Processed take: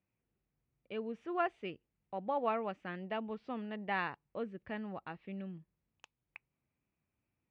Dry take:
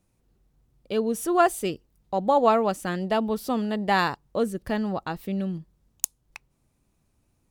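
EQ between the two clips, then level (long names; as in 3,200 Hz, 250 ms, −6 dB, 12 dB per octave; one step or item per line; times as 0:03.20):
high-pass filter 78 Hz 12 dB per octave
transistor ladder low-pass 2,800 Hz, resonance 50%
−5.5 dB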